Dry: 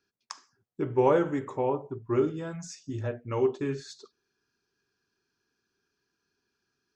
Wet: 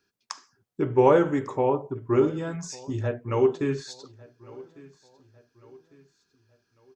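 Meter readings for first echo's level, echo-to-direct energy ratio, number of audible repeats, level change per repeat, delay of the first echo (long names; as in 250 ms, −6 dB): −22.0 dB, −21.0 dB, 2, −7.5 dB, 1,151 ms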